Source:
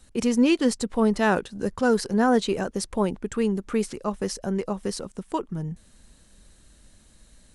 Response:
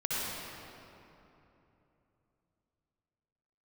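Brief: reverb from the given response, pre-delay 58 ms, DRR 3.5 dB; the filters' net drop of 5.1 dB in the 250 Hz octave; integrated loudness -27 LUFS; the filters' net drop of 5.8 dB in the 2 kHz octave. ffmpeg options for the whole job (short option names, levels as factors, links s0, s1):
-filter_complex "[0:a]equalizer=f=250:t=o:g=-6,equalizer=f=2000:t=o:g=-8.5,asplit=2[s0][s1];[1:a]atrim=start_sample=2205,adelay=58[s2];[s1][s2]afir=irnorm=-1:irlink=0,volume=0.282[s3];[s0][s3]amix=inputs=2:normalize=0,volume=0.944"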